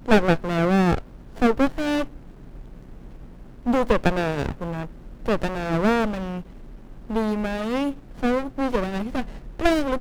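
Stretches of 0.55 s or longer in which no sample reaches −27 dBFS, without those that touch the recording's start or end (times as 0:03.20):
0:02.05–0:03.66
0:06.40–0:07.10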